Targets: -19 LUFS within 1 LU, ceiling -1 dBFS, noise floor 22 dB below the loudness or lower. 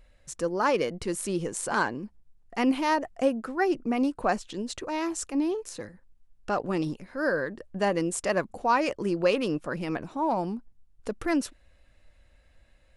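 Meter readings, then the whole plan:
loudness -28.5 LUFS; peak level -11.5 dBFS; loudness target -19.0 LUFS
-> trim +9.5 dB

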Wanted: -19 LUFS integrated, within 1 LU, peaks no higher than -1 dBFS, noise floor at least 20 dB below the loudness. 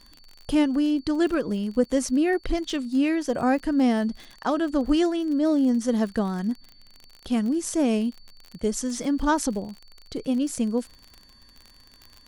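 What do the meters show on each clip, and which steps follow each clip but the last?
tick rate 37 per s; steady tone 4.5 kHz; tone level -54 dBFS; loudness -25.0 LUFS; peak level -9.5 dBFS; loudness target -19.0 LUFS
-> de-click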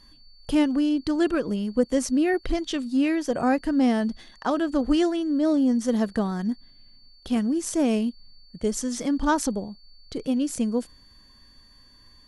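tick rate 0 per s; steady tone 4.5 kHz; tone level -54 dBFS
-> band-stop 4.5 kHz, Q 30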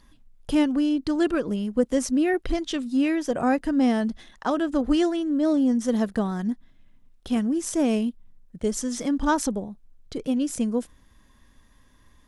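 steady tone not found; loudness -25.0 LUFS; peak level -9.5 dBFS; loudness target -19.0 LUFS
-> trim +6 dB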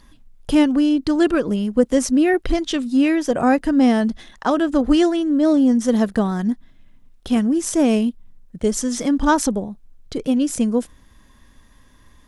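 loudness -19.0 LUFS; peak level -3.5 dBFS; noise floor -51 dBFS

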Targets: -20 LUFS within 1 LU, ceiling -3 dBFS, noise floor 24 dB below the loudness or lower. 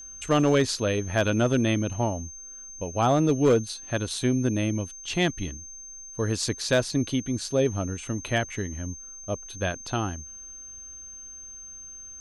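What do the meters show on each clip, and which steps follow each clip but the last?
clipped samples 0.4%; clipping level -14.0 dBFS; steady tone 6.3 kHz; tone level -40 dBFS; loudness -26.5 LUFS; peak level -14.0 dBFS; loudness target -20.0 LUFS
-> clip repair -14 dBFS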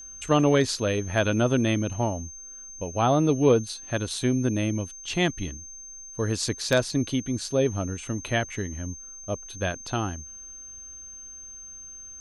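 clipped samples 0.0%; steady tone 6.3 kHz; tone level -40 dBFS
-> band-stop 6.3 kHz, Q 30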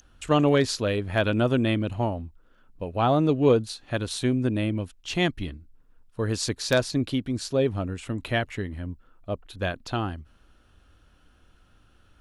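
steady tone not found; loudness -26.0 LUFS; peak level -6.0 dBFS; loudness target -20.0 LUFS
-> trim +6 dB; peak limiter -3 dBFS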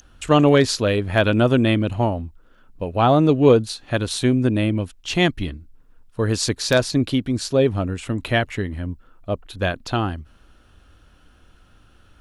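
loudness -20.0 LUFS; peak level -3.0 dBFS; noise floor -53 dBFS

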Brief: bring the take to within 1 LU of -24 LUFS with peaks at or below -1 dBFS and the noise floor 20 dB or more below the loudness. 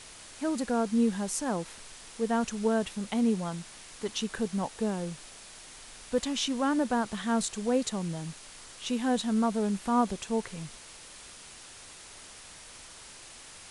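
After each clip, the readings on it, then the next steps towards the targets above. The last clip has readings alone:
noise floor -49 dBFS; noise floor target -51 dBFS; loudness -30.5 LUFS; peak level -14.0 dBFS; loudness target -24.0 LUFS
-> noise reduction 6 dB, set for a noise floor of -49 dBFS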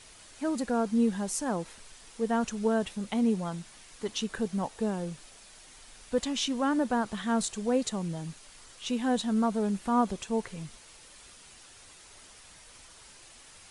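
noise floor -53 dBFS; loudness -30.5 LUFS; peak level -14.0 dBFS; loudness target -24.0 LUFS
-> trim +6.5 dB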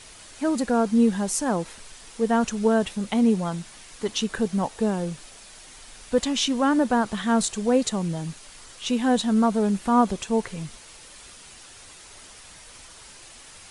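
loudness -24.0 LUFS; peak level -7.5 dBFS; noise floor -47 dBFS

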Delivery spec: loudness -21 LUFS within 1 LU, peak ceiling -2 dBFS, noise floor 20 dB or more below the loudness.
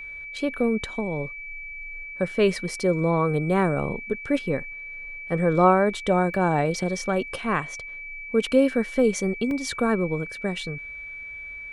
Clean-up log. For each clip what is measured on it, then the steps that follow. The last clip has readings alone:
dropouts 2; longest dropout 1.8 ms; steady tone 2.3 kHz; tone level -35 dBFS; loudness -24.5 LUFS; peak level -6.5 dBFS; loudness target -21.0 LUFS
-> interpolate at 6.34/9.51 s, 1.8 ms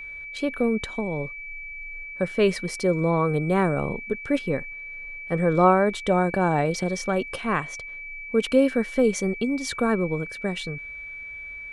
dropouts 0; steady tone 2.3 kHz; tone level -35 dBFS
-> band-stop 2.3 kHz, Q 30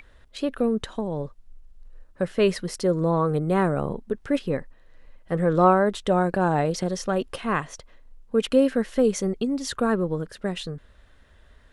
steady tone not found; loudness -24.5 LUFS; peak level -6.5 dBFS; loudness target -21.0 LUFS
-> trim +3.5 dB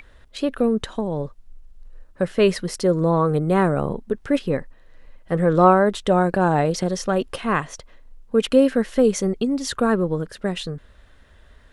loudness -21.0 LUFS; peak level -3.0 dBFS; noise floor -51 dBFS

